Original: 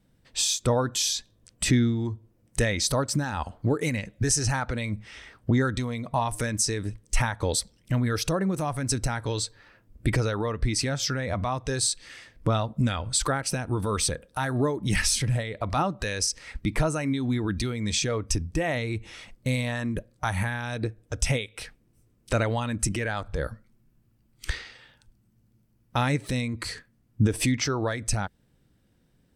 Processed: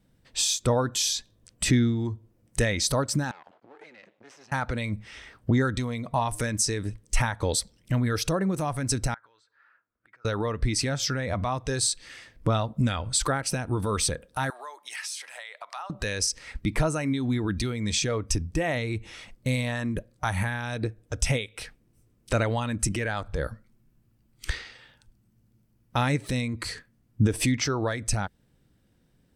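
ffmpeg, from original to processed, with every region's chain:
-filter_complex "[0:a]asettb=1/sr,asplit=3[a][b][c];[a]atrim=end=3.314[d];[b]atrim=start=3.31:end=4.52,asetpts=PTS-STARTPTS,afade=t=in:d=0.004:c=qsin,afade=t=out:st=1.206:d=0.004:c=qsin,acompressor=threshold=-36dB:ratio=16:attack=3.2:release=140:knee=1:detection=peak,aeval=exprs='max(val(0),0)':c=same,highpass=380,lowpass=3.9k[e];[c]atrim=start=4.516[f];[d][e]acrossfade=d=0.004:c1=hsin:c2=qsin[g];[g][f]acrossfade=d=0.004:c1=qsin:c2=hsin,asettb=1/sr,asplit=3[h][i][j];[h]atrim=end=9.144[k];[i]atrim=start=9.14:end=10.25,asetpts=PTS-STARTPTS,afade=t=in:d=0.004:c=qsin,afade=t=out:st=1.106:d=0.004:c=qsin,acompressor=threshold=-37dB:ratio=16:attack=3.2:release=140:knee=1:detection=peak,bandpass=f=1.4k:t=q:w=4.1[l];[j]atrim=start=10.246[m];[k][l]acrossfade=d=0.004:c1=hsin:c2=qsin[n];[n][m]acrossfade=d=0.004:c1=qsin:c2=hsin,asettb=1/sr,asplit=3[o][p][q];[o]atrim=end=14.504[r];[p]atrim=start=14.5:end=15.9,asetpts=PTS-STARTPTS,afade=t=in:d=0.004:c=qsin,afade=t=out:st=1.396:d=0.004:c=qsin,highpass=f=780:w=0.5412,highpass=f=780:w=1.3066,acompressor=threshold=-37dB:ratio=2.5:attack=3.2:release=140:knee=1:detection=peak[s];[q]atrim=start=15.896[t];[r][s]acrossfade=d=0.004:c1=hsin:c2=qsin[u];[u][t]acrossfade=d=0.004:c1=qsin:c2=hsin"

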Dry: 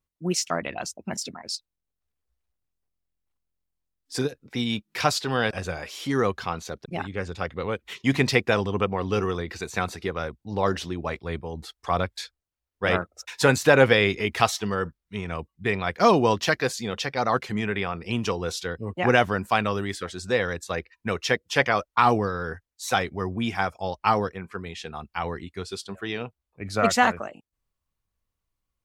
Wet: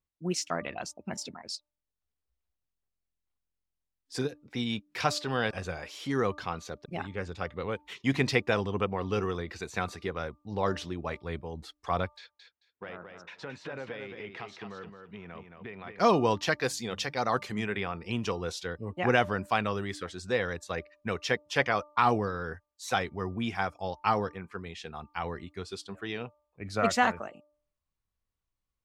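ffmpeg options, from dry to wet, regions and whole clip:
-filter_complex "[0:a]asettb=1/sr,asplit=3[a][b][c];[a]atrim=end=12.174[d];[b]atrim=start=12.17:end=15.99,asetpts=PTS-STARTPTS,afade=t=in:d=0.004:c=qsin,afade=t=out:st=3.816:d=0.004:c=qsin,acompressor=threshold=-33dB:ratio=5:attack=3.2:release=140:knee=1:detection=peak,highpass=130,lowpass=3.1k,aecho=1:1:220|440|660:0.473|0.0852|0.0153,atrim=end_sample=168462[e];[c]atrim=start=15.986[f];[d][e]acrossfade=d=0.004:c1=hsin:c2=qsin[g];[g][f]acrossfade=d=0.004:c1=qsin:c2=hsin,asettb=1/sr,asplit=3[h][i][j];[h]atrim=end=16.624[k];[i]atrim=start=16.62:end=17.77,asetpts=PTS-STARTPTS,afade=t=in:d=0.004:c=qsin,afade=t=out:st=1.146:d=0.004:c=qsin,highshelf=f=6.4k:g=9.5,bandreject=f=50:t=h:w=6,bandreject=f=100:t=h:w=6,bandreject=f=150:t=h:w=6,bandreject=f=200:t=h:w=6[l];[j]atrim=start=17.766[m];[k][l]acrossfade=d=0.004:c1=hsin:c2=qsin[n];[n][m]acrossfade=d=0.004:c1=qsin:c2=hsin,highshelf=f=11k:g=-10,bandreject=f=297.1:t=h:w=4,bandreject=f=594.2:t=h:w=4,bandreject=f=891.3:t=h:w=4,bandreject=f=1.1884k:t=h:w=4,volume=-5dB"

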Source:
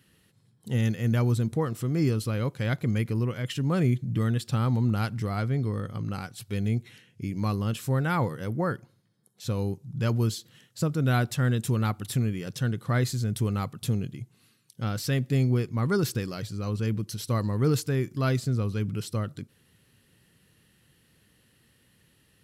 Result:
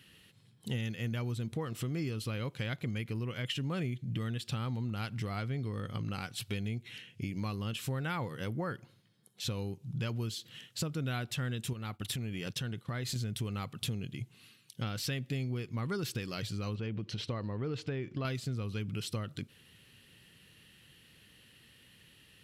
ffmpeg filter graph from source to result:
-filter_complex "[0:a]asettb=1/sr,asplit=3[a][b][c];[a]atrim=end=11.734[d];[b]atrim=start=11.73:end=13.16,asetpts=PTS-STARTPTS,afade=t=in:d=0.004:c=qsin,afade=t=out:st=1.426:d=0.004:c=qsin,acompressor=threshold=-31dB:ratio=5:attack=3.2:release=140:knee=1:detection=peak,agate=range=-33dB:threshold=-38dB:ratio=3:release=100:detection=peak[e];[c]atrim=start=13.156[f];[d][e]acrossfade=d=0.004:c1=hsin:c2=qsin[g];[g][f]acrossfade=d=0.004:c1=qsin:c2=hsin,asettb=1/sr,asplit=3[h][i][j];[h]atrim=end=16.754[k];[i]atrim=start=16.75:end=18.25,asetpts=PTS-STARTPTS,afade=t=in:d=0.004:c=qsin,afade=t=out:st=1.496:d=0.004:c=qsin,lowpass=3.4k,acompressor=threshold=-30dB:ratio=2:attack=3.2:release=140:knee=1:detection=peak,equalizer=f=510:t=o:w=1.6:g=4[l];[j]atrim=start=18.246[m];[k][l]acrossfade=d=0.004:c1=hsin:c2=qsin[n];[n][m]acrossfade=d=0.004:c1=qsin:c2=hsin,equalizer=f=2.9k:w=1.2:g=9.5,acompressor=threshold=-33dB:ratio=6"

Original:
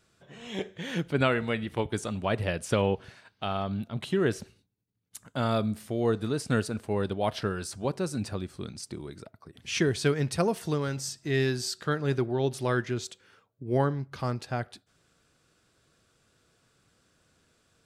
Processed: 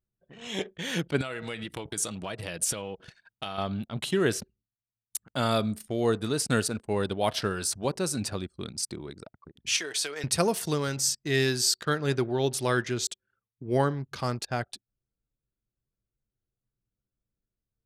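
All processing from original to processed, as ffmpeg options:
-filter_complex "[0:a]asettb=1/sr,asplit=3[a][b][c];[a]atrim=end=1.214[d];[b]atrim=start=1.21:end=3.58,asetpts=PTS-STARTPTS,afade=t=in:d=0.004:c=qsin,afade=t=out:st=2.366:d=0.004:c=qsin,highshelf=f=4.6k:g=8,aecho=1:1:6.2:0.32,atrim=end_sample=104517,acompressor=threshold=-32dB:ratio=16:attack=3.2:release=140:knee=1:detection=peak[e];[c]atrim=start=3.576[f];[d][e]acrossfade=d=0.004:c1=hsin:c2=qsin[g];[g][f]acrossfade=d=0.004:c1=qsin:c2=hsin,asettb=1/sr,asplit=3[h][i][j];[h]atrim=end=9.764[k];[i]atrim=start=9.76:end=10.24,asetpts=PTS-STARTPTS,afade=t=in:d=0.004:c=qsin,afade=t=out:st=0.476:d=0.004:c=qsin,highpass=590,aecho=1:1:6.6:0.34,atrim=end_sample=21168,acompressor=threshold=-32dB:ratio=16:attack=3.2:release=140:knee=1:detection=peak[l];[j]atrim=start=10.236[m];[k][l]acrossfade=d=0.004:c1=hsin:c2=qsin[n];[n][m]acrossfade=d=0.004:c1=qsin:c2=hsin,lowshelf=f=200:g=-3.5,anlmdn=0.0251,highshelf=f=4k:g=11,volume=1.5dB"

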